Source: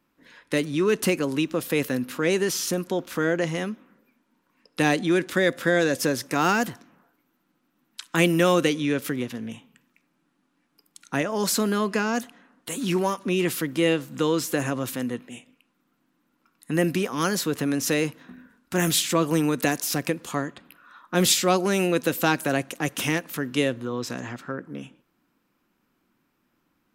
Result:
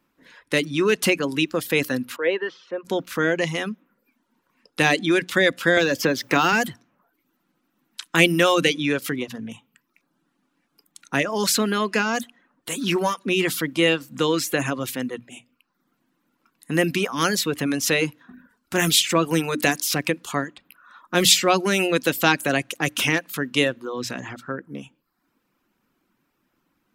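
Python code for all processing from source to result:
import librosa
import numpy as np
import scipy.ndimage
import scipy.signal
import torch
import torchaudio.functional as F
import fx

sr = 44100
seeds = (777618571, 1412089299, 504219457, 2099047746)

y = fx.chain(x, sr, fx.cabinet(low_hz=490.0, low_slope=12, high_hz=2700.0, hz=(500.0, 750.0, 1300.0, 2400.0), db=(5, -6, -5, -8)),
    fx.band_widen(depth_pct=40), at=(2.16, 2.85))
y = fx.chain(y, sr, fx.peak_eq(hz=9300.0, db=-13.0, octaves=0.59),
    fx.quant_dither(seeds[0], bits=10, dither='triangular'),
    fx.band_squash(depth_pct=100), at=(5.77, 6.53))
y = fx.hum_notches(y, sr, base_hz=60, count=5)
y = fx.dereverb_blind(y, sr, rt60_s=0.58)
y = fx.dynamic_eq(y, sr, hz=2900.0, q=0.72, threshold_db=-41.0, ratio=4.0, max_db=6)
y = y * 10.0 ** (2.0 / 20.0)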